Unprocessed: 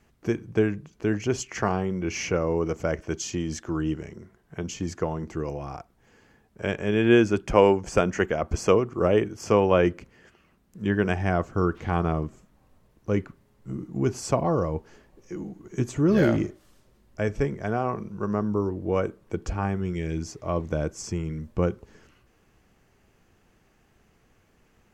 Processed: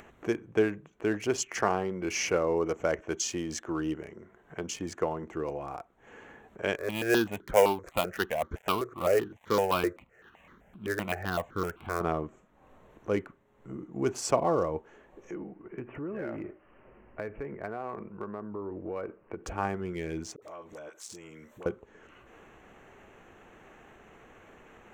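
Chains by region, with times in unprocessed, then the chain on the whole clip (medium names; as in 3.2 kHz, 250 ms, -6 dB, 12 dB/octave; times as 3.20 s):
6.76–12.01 s: dead-time distortion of 0.12 ms + stepped phaser 7.8 Hz 820–2600 Hz
15.34–19.44 s: steep low-pass 2.9 kHz 96 dB/octave + compression 10:1, threshold -28 dBFS
20.36–21.66 s: RIAA curve recording + compression 4:1, threshold -45 dBFS + phase dispersion highs, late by 61 ms, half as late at 540 Hz
whole clip: local Wiener filter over 9 samples; upward compressor, threshold -36 dBFS; tone controls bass -12 dB, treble +3 dB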